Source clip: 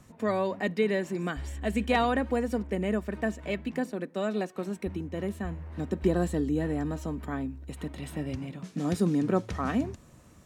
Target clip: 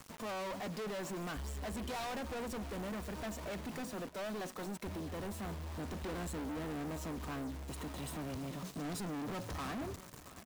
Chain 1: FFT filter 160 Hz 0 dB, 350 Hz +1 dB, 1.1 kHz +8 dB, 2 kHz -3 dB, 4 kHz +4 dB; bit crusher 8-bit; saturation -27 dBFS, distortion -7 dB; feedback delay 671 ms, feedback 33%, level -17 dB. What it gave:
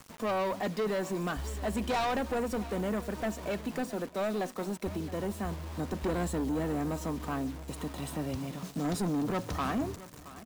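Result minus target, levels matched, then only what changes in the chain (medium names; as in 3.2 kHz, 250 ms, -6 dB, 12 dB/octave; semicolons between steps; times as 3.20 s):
saturation: distortion -6 dB
change: saturation -39 dBFS, distortion -2 dB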